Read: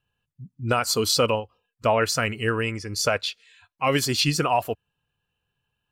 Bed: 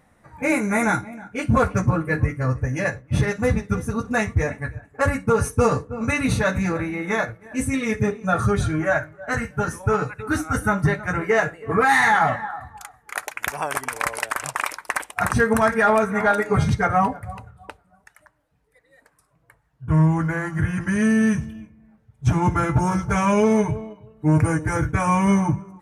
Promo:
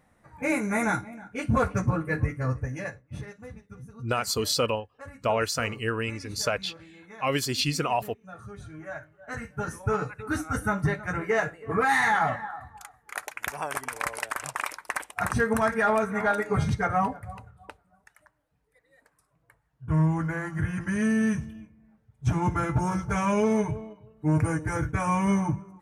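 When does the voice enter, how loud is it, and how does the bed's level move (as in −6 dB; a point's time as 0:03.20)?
3.40 s, −4.5 dB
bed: 0:02.55 −5.5 dB
0:03.49 −23.5 dB
0:08.45 −23.5 dB
0:09.78 −6 dB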